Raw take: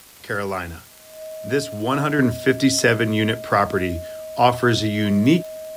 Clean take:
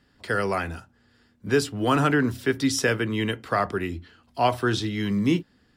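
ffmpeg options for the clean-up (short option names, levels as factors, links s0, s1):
-af "adeclick=t=4,bandreject=f=630:w=30,afwtdn=0.005,asetnsamples=n=441:p=0,asendcmd='2.19 volume volume -6dB',volume=1"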